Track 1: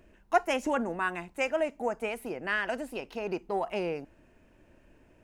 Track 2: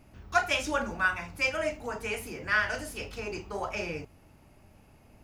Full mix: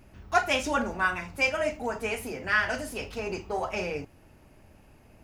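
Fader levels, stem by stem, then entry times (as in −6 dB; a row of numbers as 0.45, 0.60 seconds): −2.0, +0.5 decibels; 0.00, 0.00 seconds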